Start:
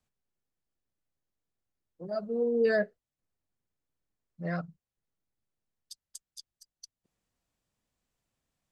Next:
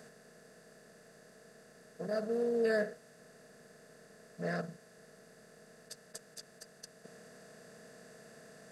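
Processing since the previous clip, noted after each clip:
compressor on every frequency bin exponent 0.4
high-shelf EQ 8,400 Hz +5.5 dB
level −7 dB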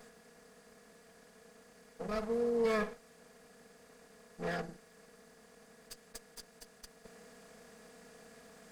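lower of the sound and its delayed copy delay 4.2 ms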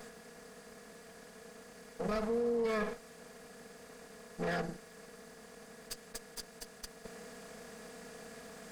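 brickwall limiter −33 dBFS, peak gain reduction 10 dB
level +6.5 dB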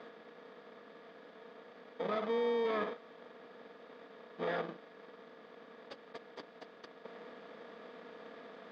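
in parallel at −3 dB: decimation without filtering 32×
on the sum: loudspeaker in its box 270–3,700 Hz, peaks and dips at 290 Hz +5 dB, 560 Hz +6 dB, 1,200 Hz +9 dB, 3,600 Hz +5 dB
level −5 dB

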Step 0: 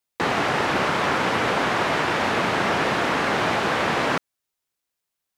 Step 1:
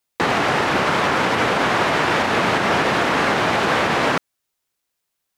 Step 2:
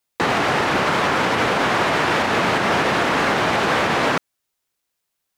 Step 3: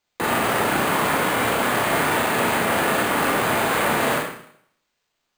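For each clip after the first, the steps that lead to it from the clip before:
brickwall limiter −14 dBFS, peak gain reduction 5 dB; level +5 dB
gain into a clipping stage and back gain 12.5 dB
brickwall limiter −22 dBFS, peak gain reduction 9.5 dB; four-comb reverb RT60 0.65 s, combs from 26 ms, DRR −1 dB; bad sample-rate conversion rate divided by 4×, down filtered, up hold; level +4 dB

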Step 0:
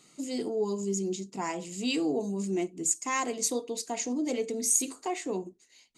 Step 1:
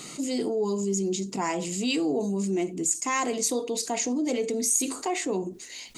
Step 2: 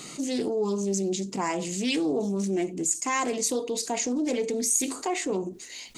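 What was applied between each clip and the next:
envelope flattener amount 50%
highs frequency-modulated by the lows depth 0.16 ms

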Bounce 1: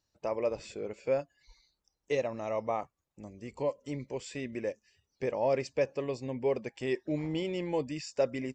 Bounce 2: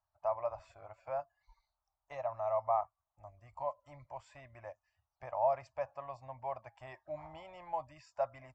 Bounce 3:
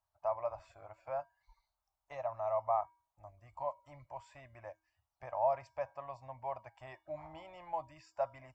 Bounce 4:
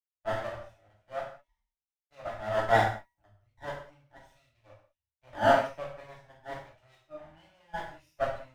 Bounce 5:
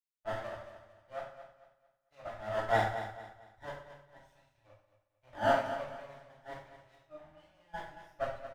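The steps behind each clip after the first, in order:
drawn EQ curve 110 Hz 0 dB, 210 Hz −26 dB, 300 Hz −20 dB, 450 Hz −27 dB, 640 Hz +9 dB, 1,200 Hz +8 dB, 1,800 Hz −5 dB, 2,900 Hz −12 dB, 5,500 Hz −15 dB; level −5.5 dB
tuned comb filter 320 Hz, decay 0.47 s, harmonics odd, mix 60%; level +7 dB
lower of the sound and its delayed copy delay 0.34 ms; reverb whose tail is shaped and stops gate 230 ms falling, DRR −4.5 dB; multiband upward and downward expander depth 100%; level −2.5 dB
repeating echo 224 ms, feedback 33%, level −11 dB; level −5.5 dB

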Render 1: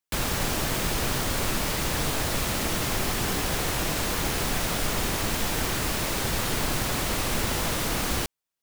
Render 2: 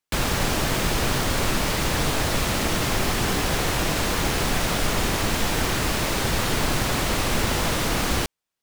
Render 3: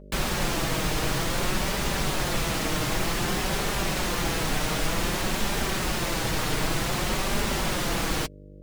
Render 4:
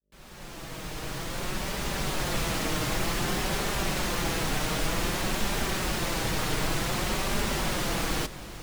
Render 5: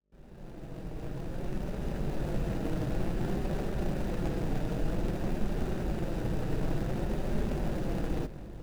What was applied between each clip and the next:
high-shelf EQ 8,800 Hz −7 dB; level +4.5 dB
hum with harmonics 50 Hz, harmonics 12, −42 dBFS −4 dB per octave; flanger 0.54 Hz, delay 4.9 ms, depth 1.7 ms, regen −24%
fade in at the beginning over 2.42 s; feedback delay with all-pass diffusion 699 ms, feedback 57%, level −15 dB; level −2 dB
running median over 41 samples

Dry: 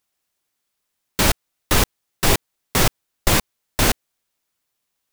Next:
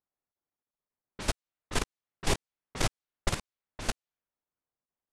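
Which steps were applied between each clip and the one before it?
low-pass filter 10,000 Hz 24 dB per octave
low-pass that shuts in the quiet parts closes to 1,100 Hz, open at −15 dBFS
output level in coarse steps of 15 dB
level −8.5 dB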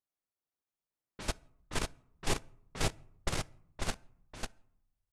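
single-tap delay 545 ms −3.5 dB
on a send at −18.5 dB: convolution reverb RT60 0.70 s, pre-delay 6 ms
on the sum: level −5 dB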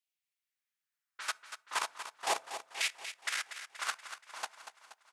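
auto-filter high-pass saw down 0.4 Hz 670–2,700 Hz
repeating echo 238 ms, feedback 54%, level −10.5 dB
level +1 dB

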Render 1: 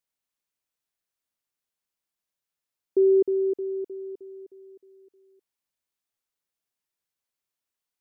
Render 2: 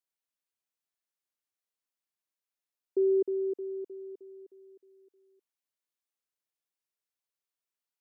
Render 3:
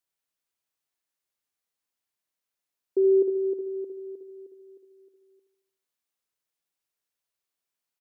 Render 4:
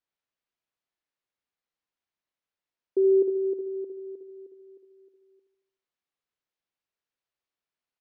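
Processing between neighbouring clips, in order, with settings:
high-pass filter 230 Hz; level −6 dB
repeating echo 75 ms, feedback 56%, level −11 dB; level +4 dB
high-frequency loss of the air 150 metres

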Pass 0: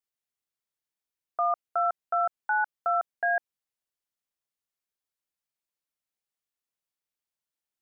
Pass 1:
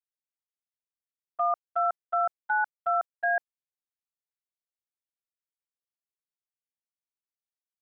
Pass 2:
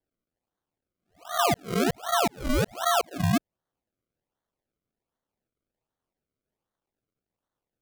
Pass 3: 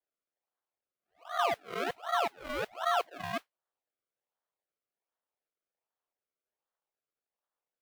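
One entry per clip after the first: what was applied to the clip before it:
noise gate −30 dBFS, range −17 dB
peak hold with a rise ahead of every peak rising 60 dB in 0.34 s; in parallel at −1 dB: downward compressor, threshold −33 dBFS, peak gain reduction 10 dB; on the sum: sample-and-hold swept by an LFO 34×, swing 100% 1.3 Hz
pitch vibrato 3.8 Hz 29 cents; noise that follows the level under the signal 16 dB; three-way crossover with the lows and the highs turned down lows −19 dB, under 450 Hz, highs −16 dB, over 3,600 Hz; level −4 dB

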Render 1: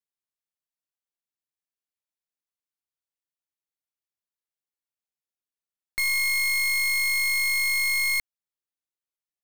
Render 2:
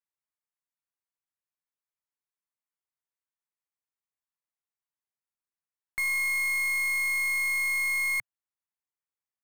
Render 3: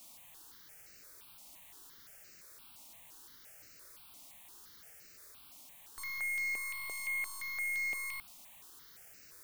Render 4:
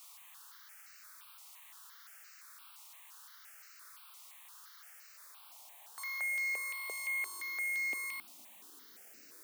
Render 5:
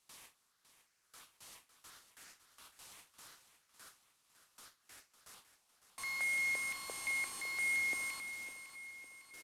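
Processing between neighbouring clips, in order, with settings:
octave-band graphic EQ 125/1,000/2,000/4,000/8,000 Hz +7/+9/+7/−7/+4 dB; level −9 dB
brickwall limiter −33 dBFS, peak gain reduction 10.5 dB; background noise white −58 dBFS; step-sequenced phaser 5.8 Hz 440–3,400 Hz; level +3.5 dB
high-pass filter sweep 1,200 Hz → 270 Hz, 0:04.75–0:07.97
variable-slope delta modulation 64 kbit/s; noise gate with hold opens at −44 dBFS; repeating echo 555 ms, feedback 53%, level −11.5 dB

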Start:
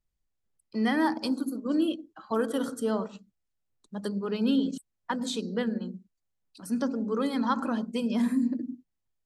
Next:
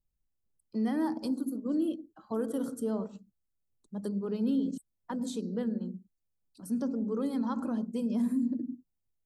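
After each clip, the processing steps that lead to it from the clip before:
parametric band 2,400 Hz −14.5 dB 2.9 octaves
in parallel at 0 dB: brickwall limiter −25.5 dBFS, peak gain reduction 7.5 dB
on the sum: level −6 dB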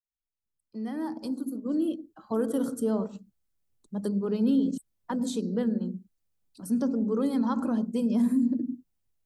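fade in at the beginning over 2.47 s
level +5 dB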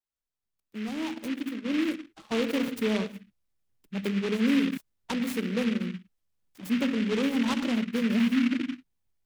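pitch vibrato 0.95 Hz 37 cents
short delay modulated by noise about 2,100 Hz, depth 0.13 ms

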